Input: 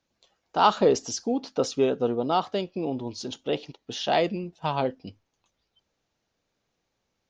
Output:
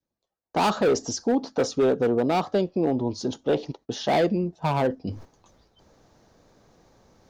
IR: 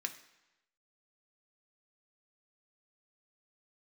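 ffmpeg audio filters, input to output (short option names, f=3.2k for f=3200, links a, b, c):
-filter_complex "[0:a]agate=range=-24dB:threshold=-54dB:ratio=16:detection=peak,areverse,acompressor=mode=upward:threshold=-34dB:ratio=2.5,areverse,adynamicequalizer=threshold=0.0141:dfrequency=1000:dqfactor=1.3:tfrequency=1000:tqfactor=1.3:attack=5:release=100:ratio=0.375:range=1.5:mode=cutabove:tftype=bell,lowpass=f=4k:p=1,equalizer=f=2.7k:t=o:w=1.2:g=-12,bandreject=f=1.4k:w=25,acrossover=split=430|2700[a][b][c];[a]alimiter=level_in=3dB:limit=-24dB:level=0:latency=1,volume=-3dB[d];[b]volume=30dB,asoftclip=hard,volume=-30dB[e];[d][e][c]amix=inputs=3:normalize=0,volume=8dB"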